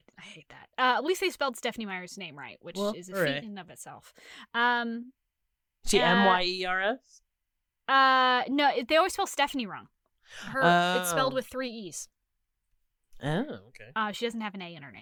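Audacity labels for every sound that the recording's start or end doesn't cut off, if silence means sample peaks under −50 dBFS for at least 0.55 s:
5.840000	7.180000	sound
7.880000	12.050000	sound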